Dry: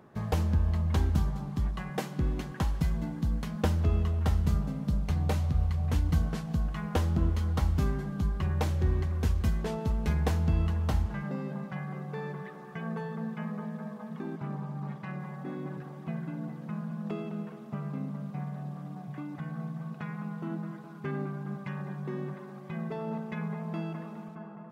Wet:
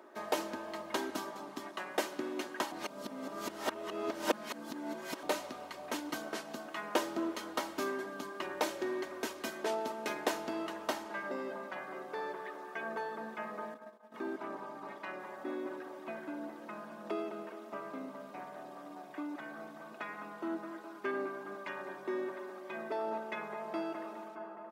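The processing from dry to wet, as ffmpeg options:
-filter_complex "[0:a]asettb=1/sr,asplit=3[a][b][c];[a]atrim=end=13.744[d];[b]atrim=start=13.74:end=14.14,asetpts=PTS-STARTPTS,afade=t=in:d=0.004:c=qsin,afade=t=out:st=0.396:d=0.004:c=qsin,agate=range=-33dB:threshold=-32dB:ratio=3:release=100:detection=peak[e];[c]atrim=start=14.136[f];[d][e]acrossfade=d=0.004:c1=hsin:c2=qsin[g];[g][f]acrossfade=d=0.004:c1=qsin:c2=hsin,asplit=3[h][i][j];[h]atrim=end=2.722[k];[i]atrim=start=2.718:end=5.232,asetpts=PTS-STARTPTS,areverse[l];[j]atrim=start=5.228[m];[k][l]acrossfade=d=0.004:c1=hsin:c2=hsin[n];[n][m]acrossfade=d=0.004:c1=hsin:c2=hsin,highpass=f=330:w=0.5412,highpass=f=330:w=1.3066,aecho=1:1:3.2:0.49,volume=2dB"

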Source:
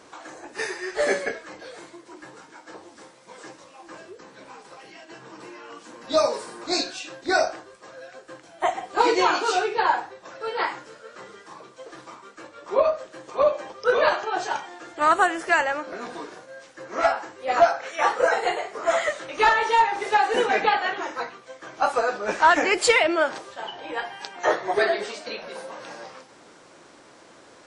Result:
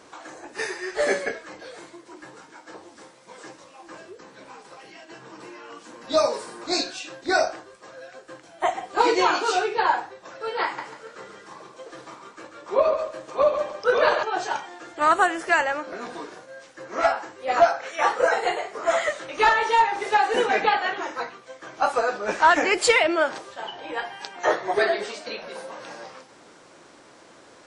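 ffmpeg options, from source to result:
-filter_complex "[0:a]asettb=1/sr,asplit=3[a][b][c];[a]atrim=end=10.644[d];[b]atrim=start=10.64:end=14.23,asetpts=PTS-STARTPTS,afade=t=in:d=0.004:c=qsin,afade=t=out:st=3.586:d=0.004:c=qsin,aecho=1:1:141|282|423:0.447|0.121|0.0326,atrim=end_sample=158319[e];[c]atrim=start=14.226[f];[d][e]acrossfade=d=0.004:c1=hsin:c2=qsin[g];[g][f]acrossfade=d=0.004:c1=qsin:c2=hsin"

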